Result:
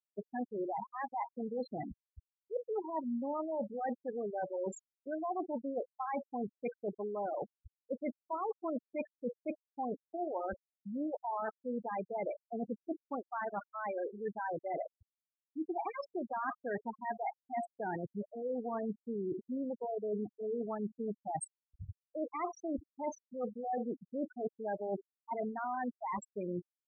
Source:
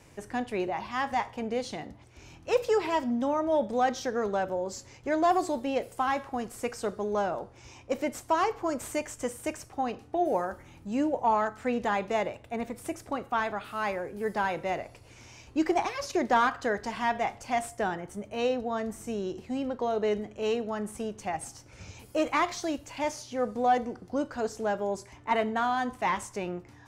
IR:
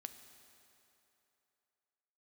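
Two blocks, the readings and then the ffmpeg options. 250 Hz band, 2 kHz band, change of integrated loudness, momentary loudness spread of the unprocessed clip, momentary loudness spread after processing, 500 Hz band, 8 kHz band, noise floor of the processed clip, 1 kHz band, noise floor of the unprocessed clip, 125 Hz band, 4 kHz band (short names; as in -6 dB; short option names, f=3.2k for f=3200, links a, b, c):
-7.0 dB, -14.0 dB, -9.0 dB, 10 LU, 5 LU, -8.5 dB, under -10 dB, under -85 dBFS, -10.0 dB, -53 dBFS, -6.0 dB, under -25 dB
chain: -af "areverse,acompressor=threshold=-36dB:ratio=16,areverse,afftfilt=real='re*gte(hypot(re,im),0.0355)':imag='im*gte(hypot(re,im),0.0355)':win_size=1024:overlap=0.75,volume=3dB"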